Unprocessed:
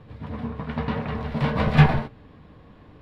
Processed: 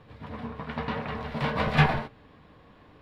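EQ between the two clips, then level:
low-shelf EQ 380 Hz −8.5 dB
0.0 dB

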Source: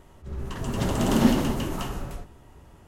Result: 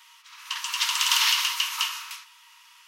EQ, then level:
linear-phase brick-wall high-pass 900 Hz
flat-topped bell 3,600 Hz +10.5 dB
high-shelf EQ 7,900 Hz +7.5 dB
+3.5 dB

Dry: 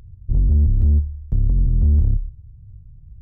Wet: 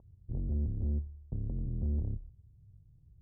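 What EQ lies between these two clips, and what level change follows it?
Bessel low-pass filter 510 Hz, order 8
spectral tilt +4.5 dB per octave
0.0 dB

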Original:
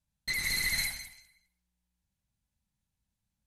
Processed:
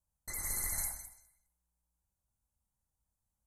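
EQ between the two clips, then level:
Chebyshev band-stop filter 1,100–7,700 Hz, order 2
parametric band 180 Hz −10 dB 1.5 octaves
+1.5 dB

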